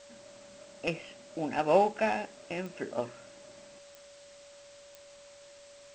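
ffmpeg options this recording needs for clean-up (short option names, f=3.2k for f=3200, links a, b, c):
-af "adeclick=t=4,bandreject=f=570:w=30,afwtdn=0.002"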